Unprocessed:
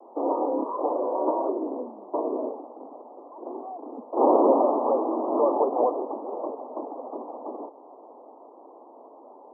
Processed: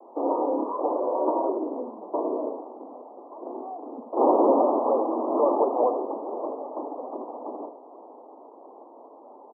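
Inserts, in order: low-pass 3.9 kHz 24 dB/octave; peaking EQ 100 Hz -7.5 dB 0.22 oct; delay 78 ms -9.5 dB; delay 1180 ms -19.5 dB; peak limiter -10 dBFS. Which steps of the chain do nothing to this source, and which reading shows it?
low-pass 3.9 kHz: input has nothing above 1.3 kHz; peaking EQ 100 Hz: input has nothing below 200 Hz

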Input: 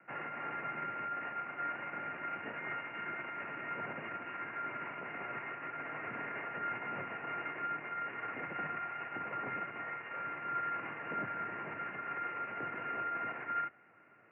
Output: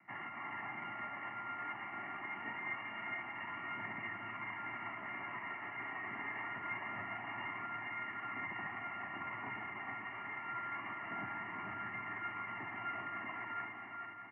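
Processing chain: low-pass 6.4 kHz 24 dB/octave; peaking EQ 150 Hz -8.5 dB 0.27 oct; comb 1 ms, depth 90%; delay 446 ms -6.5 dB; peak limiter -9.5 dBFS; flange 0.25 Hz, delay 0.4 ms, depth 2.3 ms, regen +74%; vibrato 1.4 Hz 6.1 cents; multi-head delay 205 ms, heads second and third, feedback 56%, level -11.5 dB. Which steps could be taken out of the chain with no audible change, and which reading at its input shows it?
low-pass 6.4 kHz: input has nothing above 2.9 kHz; peak limiter -9.5 dBFS: peak at its input -25.0 dBFS

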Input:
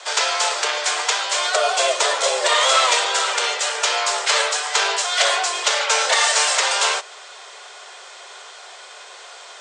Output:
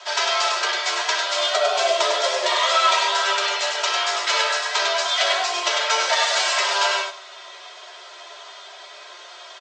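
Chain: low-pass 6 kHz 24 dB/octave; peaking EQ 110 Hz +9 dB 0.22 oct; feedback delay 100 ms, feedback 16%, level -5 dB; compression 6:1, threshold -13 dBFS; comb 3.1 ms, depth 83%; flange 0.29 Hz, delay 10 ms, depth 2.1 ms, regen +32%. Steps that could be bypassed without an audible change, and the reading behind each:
peaking EQ 110 Hz: input has nothing below 320 Hz

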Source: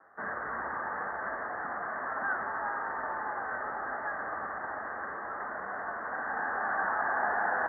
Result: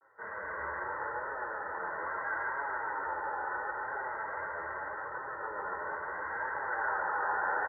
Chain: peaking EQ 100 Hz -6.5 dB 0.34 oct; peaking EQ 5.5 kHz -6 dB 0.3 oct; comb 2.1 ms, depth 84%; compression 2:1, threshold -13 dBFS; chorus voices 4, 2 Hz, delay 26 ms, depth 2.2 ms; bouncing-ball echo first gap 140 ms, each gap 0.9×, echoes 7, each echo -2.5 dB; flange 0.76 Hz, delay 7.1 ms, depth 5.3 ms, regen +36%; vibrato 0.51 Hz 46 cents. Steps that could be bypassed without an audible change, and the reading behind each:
peaking EQ 5.5 kHz: input has nothing above 2.2 kHz; compression, threshold -13 dBFS: peak at its input -14.5 dBFS

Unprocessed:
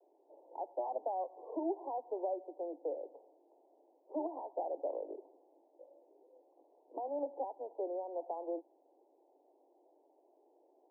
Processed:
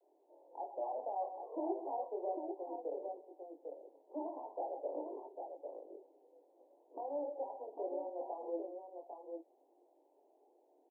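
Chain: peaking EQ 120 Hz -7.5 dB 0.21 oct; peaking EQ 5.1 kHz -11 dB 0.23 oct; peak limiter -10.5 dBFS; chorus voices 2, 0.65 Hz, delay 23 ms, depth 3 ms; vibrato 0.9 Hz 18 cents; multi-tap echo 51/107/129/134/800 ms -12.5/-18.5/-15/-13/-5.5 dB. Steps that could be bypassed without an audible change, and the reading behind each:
peaking EQ 120 Hz: input has nothing below 240 Hz; peaking EQ 5.1 kHz: input has nothing above 1.1 kHz; peak limiter -10.5 dBFS: peak at its input -25.5 dBFS

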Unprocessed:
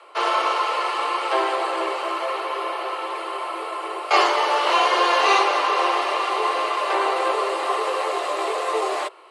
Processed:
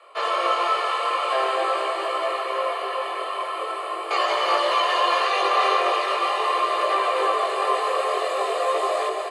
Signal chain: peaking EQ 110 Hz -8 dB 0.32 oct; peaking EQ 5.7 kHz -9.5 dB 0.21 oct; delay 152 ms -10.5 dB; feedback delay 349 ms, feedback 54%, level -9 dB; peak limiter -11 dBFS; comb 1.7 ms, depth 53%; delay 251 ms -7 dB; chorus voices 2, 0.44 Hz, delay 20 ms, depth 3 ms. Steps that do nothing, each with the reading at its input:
peaking EQ 110 Hz: input has nothing below 290 Hz

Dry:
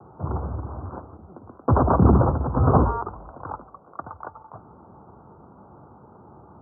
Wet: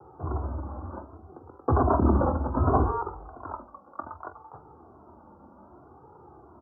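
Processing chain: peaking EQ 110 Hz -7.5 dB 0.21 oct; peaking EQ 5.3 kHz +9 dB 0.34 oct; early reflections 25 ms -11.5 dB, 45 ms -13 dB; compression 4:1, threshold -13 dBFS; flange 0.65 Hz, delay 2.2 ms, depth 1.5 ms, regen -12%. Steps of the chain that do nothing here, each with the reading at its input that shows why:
peaking EQ 5.3 kHz: input has nothing above 1.4 kHz

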